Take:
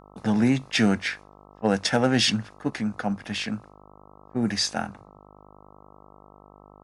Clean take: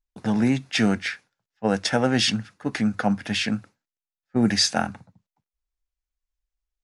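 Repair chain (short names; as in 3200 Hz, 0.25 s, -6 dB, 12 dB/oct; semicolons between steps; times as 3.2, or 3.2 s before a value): clip repair -11.5 dBFS; de-hum 50.3 Hz, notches 26; gain correction +5 dB, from 2.7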